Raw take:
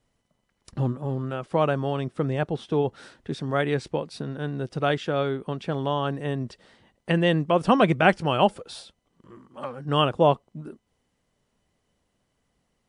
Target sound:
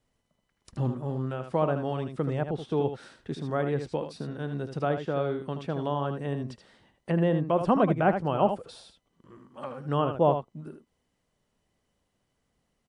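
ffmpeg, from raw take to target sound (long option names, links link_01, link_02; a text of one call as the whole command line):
ffmpeg -i in.wav -filter_complex "[0:a]aecho=1:1:77:0.376,acrossover=split=1400[link_01][link_02];[link_02]acompressor=threshold=-43dB:ratio=6[link_03];[link_01][link_03]amix=inputs=2:normalize=0,volume=-3.5dB" out.wav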